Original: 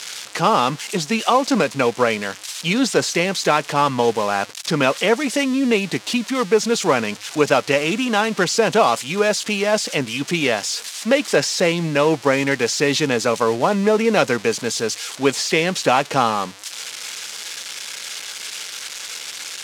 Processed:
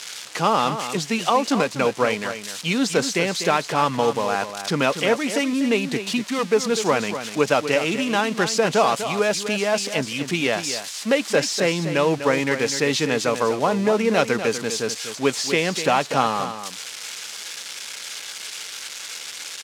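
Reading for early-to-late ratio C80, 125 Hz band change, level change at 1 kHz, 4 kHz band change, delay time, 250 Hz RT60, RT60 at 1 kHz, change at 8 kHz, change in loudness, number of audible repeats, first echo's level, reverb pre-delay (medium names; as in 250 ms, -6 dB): no reverb, -2.5 dB, -2.5 dB, -2.5 dB, 247 ms, no reverb, no reverb, -2.5 dB, -2.5 dB, 1, -10.0 dB, no reverb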